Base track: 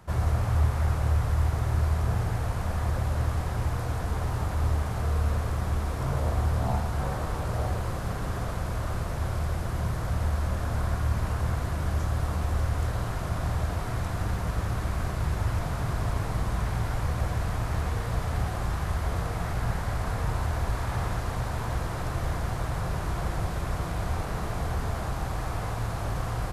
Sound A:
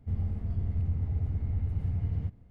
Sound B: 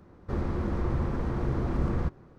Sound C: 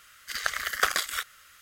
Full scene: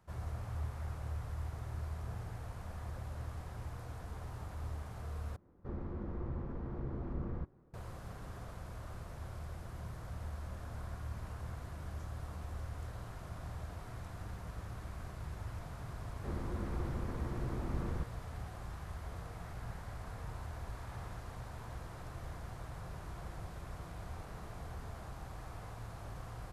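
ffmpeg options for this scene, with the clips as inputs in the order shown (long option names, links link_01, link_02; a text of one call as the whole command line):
ffmpeg -i bed.wav -i cue0.wav -i cue1.wav -filter_complex "[2:a]asplit=2[link_01][link_02];[0:a]volume=-16dB[link_03];[link_01]lowpass=frequency=1200:poles=1[link_04];[link_03]asplit=2[link_05][link_06];[link_05]atrim=end=5.364[link_07];[link_04]atrim=end=2.38,asetpts=PTS-STARTPTS,volume=-11.5dB[link_08];[link_06]atrim=start=7.736[link_09];[link_02]atrim=end=2.38,asetpts=PTS-STARTPTS,volume=-10.5dB,afade=type=in:duration=0.004:curve=hsin,afade=type=out:start_time=2.376:duration=0.004:curve=hsin,adelay=15950[link_10];[link_07][link_08]acrossfade=duration=0.004:curve1=hsin:curve2=hsin[link_11];[link_11][link_09]acrossfade=duration=0.004:curve1=hsin:curve2=hsin[link_12];[link_12][link_10]amix=inputs=2:normalize=0" out.wav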